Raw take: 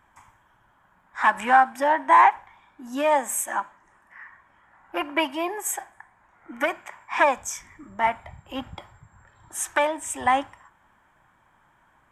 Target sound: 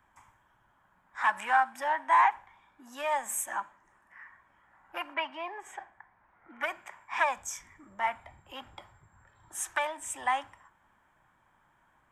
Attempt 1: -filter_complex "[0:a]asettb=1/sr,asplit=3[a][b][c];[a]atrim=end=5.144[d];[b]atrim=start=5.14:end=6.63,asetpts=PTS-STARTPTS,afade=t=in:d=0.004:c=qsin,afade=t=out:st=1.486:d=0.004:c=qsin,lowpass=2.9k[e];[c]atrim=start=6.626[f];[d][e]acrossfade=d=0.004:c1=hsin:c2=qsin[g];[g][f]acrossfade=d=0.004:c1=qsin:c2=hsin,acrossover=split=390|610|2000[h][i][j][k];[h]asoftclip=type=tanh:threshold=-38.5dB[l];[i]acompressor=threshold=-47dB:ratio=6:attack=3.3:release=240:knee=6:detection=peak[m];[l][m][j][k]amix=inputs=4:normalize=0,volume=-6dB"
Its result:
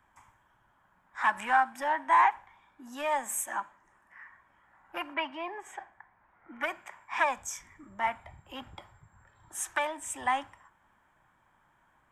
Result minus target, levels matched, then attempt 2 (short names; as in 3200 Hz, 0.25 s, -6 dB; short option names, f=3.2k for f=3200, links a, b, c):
soft clip: distortion -6 dB
-filter_complex "[0:a]asettb=1/sr,asplit=3[a][b][c];[a]atrim=end=5.144[d];[b]atrim=start=5.14:end=6.63,asetpts=PTS-STARTPTS,afade=t=in:d=0.004:c=qsin,afade=t=out:st=1.486:d=0.004:c=qsin,lowpass=2.9k[e];[c]atrim=start=6.626[f];[d][e]acrossfade=d=0.004:c1=hsin:c2=qsin[g];[g][f]acrossfade=d=0.004:c1=qsin:c2=hsin,acrossover=split=390|610|2000[h][i][j][k];[h]asoftclip=type=tanh:threshold=-49dB[l];[i]acompressor=threshold=-47dB:ratio=6:attack=3.3:release=240:knee=6:detection=peak[m];[l][m][j][k]amix=inputs=4:normalize=0,volume=-6dB"